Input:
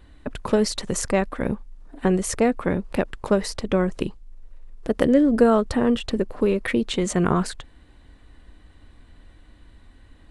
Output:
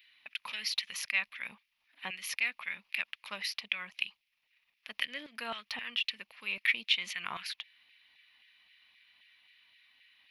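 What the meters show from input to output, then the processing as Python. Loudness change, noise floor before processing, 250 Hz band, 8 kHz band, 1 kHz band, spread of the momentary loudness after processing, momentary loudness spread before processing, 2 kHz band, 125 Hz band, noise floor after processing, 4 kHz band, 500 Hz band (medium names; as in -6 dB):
-12.0 dB, -52 dBFS, -35.0 dB, -13.5 dB, -17.0 dB, 13 LU, 14 LU, -0.5 dB, under -30 dB, -80 dBFS, +1.0 dB, -32.5 dB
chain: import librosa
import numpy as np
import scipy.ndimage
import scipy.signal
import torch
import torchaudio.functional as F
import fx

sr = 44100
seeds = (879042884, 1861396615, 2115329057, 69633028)

y = fx.curve_eq(x, sr, hz=(100.0, 210.0, 380.0, 1000.0, 1500.0, 2400.0, 5500.0, 8200.0, 12000.0), db=(0, -4, -22, -17, -17, 5, -6, -28, 4))
y = fx.filter_lfo_highpass(y, sr, shape='saw_down', hz=3.8, low_hz=790.0, high_hz=2100.0, q=1.7)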